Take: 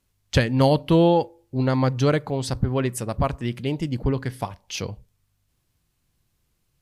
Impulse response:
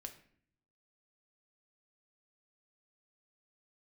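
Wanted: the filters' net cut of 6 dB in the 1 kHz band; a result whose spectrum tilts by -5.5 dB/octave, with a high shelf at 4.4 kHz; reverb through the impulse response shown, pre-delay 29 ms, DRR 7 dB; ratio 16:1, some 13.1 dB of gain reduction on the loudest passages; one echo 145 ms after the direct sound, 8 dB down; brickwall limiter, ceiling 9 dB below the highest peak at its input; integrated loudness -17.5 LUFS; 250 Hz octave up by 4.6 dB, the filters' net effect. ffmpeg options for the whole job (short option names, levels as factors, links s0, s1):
-filter_complex "[0:a]equalizer=f=250:t=o:g=6.5,equalizer=f=1000:t=o:g=-9,highshelf=f=4400:g=6,acompressor=threshold=0.0708:ratio=16,alimiter=limit=0.0841:level=0:latency=1,aecho=1:1:145:0.398,asplit=2[s0][s1];[1:a]atrim=start_sample=2205,adelay=29[s2];[s1][s2]afir=irnorm=-1:irlink=0,volume=0.794[s3];[s0][s3]amix=inputs=2:normalize=0,volume=4.73"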